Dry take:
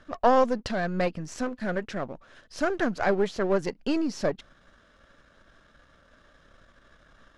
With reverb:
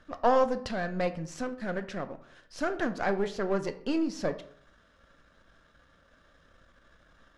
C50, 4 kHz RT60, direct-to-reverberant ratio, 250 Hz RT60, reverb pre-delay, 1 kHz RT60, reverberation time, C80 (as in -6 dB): 14.0 dB, 0.40 s, 9.0 dB, 0.65 s, 3 ms, 0.60 s, 0.60 s, 17.5 dB